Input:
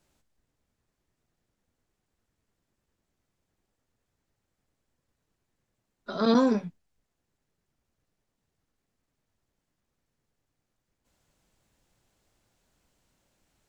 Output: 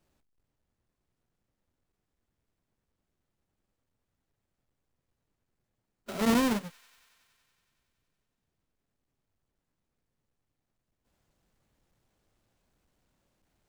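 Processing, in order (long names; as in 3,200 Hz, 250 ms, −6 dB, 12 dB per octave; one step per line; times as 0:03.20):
each half-wave held at its own peak
delay with a high-pass on its return 93 ms, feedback 80%, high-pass 1,800 Hz, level −23.5 dB
level −7.5 dB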